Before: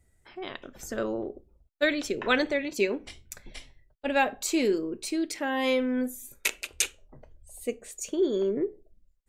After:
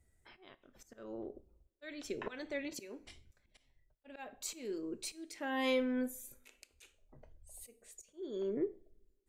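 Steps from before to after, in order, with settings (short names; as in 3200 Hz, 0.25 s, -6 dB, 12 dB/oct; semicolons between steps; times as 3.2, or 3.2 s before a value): auto swell 0.479 s; two-slope reverb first 0.44 s, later 1.6 s, from -22 dB, DRR 15.5 dB; gain -6.5 dB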